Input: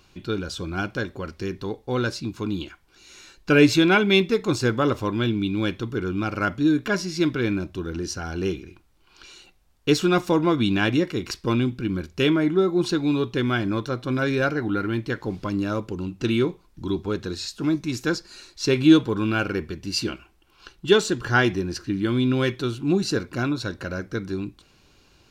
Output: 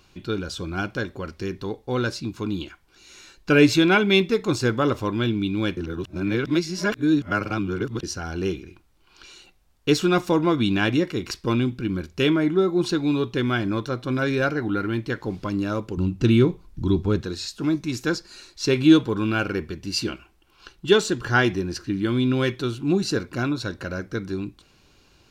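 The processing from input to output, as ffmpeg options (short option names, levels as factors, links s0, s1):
-filter_complex "[0:a]asettb=1/sr,asplit=3[s0][s1][s2];[s0]atrim=end=15.974[s3];[s1]atrim=start=15.97:end=17.21,asetpts=PTS-STARTPTS,afade=t=in:d=0.004:c=qsin,afade=t=out:st=1.236:d=0.004:c=qsin,lowshelf=f=210:g=12[s4];[s2]atrim=start=17.206[s5];[s3][s4]acrossfade=d=0.004:c1=hsin:c2=qsin[s6];[s6][s5]acrossfade=d=0.004:c1=qsin:c2=hsin,asplit=3[s7][s8][s9];[s7]atrim=end=5.772[s10];[s8]atrim=start=5.768:end=8.032,asetpts=PTS-STARTPTS,areverse[s11];[s9]atrim=start=8.028[s12];[s10][s11]acrossfade=d=0.004:c1=hsin:c2=hsin[s13];[s13][s12]acrossfade=d=0.004:c1=hsin:c2=hsin"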